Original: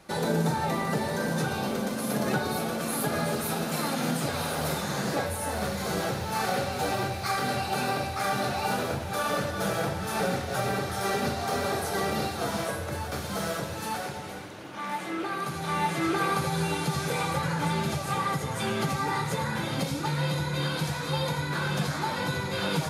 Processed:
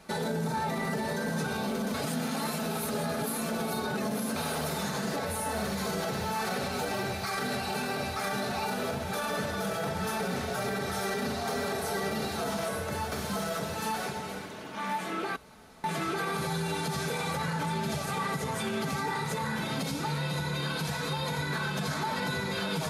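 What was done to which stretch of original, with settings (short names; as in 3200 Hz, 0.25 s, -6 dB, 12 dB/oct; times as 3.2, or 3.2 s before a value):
1.94–4.36 reverse
15.36–15.84 room tone
whole clip: comb 4.6 ms, depth 48%; limiter -23 dBFS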